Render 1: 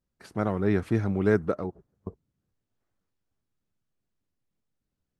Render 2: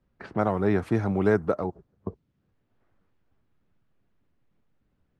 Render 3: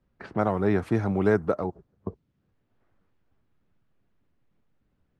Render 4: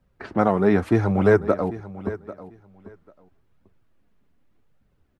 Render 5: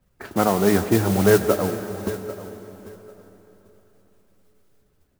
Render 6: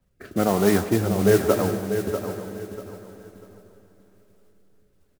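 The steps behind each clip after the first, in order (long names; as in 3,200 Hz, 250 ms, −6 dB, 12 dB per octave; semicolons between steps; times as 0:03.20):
dynamic equaliser 810 Hz, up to +7 dB, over −41 dBFS, Q 1.2; low-pass that shuts in the quiet parts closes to 2,400 Hz, open at −22.5 dBFS; multiband upward and downward compressor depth 40%
no processing that can be heard
flanger 0.83 Hz, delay 1.2 ms, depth 3.9 ms, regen −38%; repeating echo 793 ms, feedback 17%, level −16 dB; level +9 dB
noise that follows the level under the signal 14 dB; dense smooth reverb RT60 4 s, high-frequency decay 0.85×, DRR 9 dB
rotating-speaker cabinet horn 1.1 Hz; repeating echo 643 ms, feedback 27%, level −9 dB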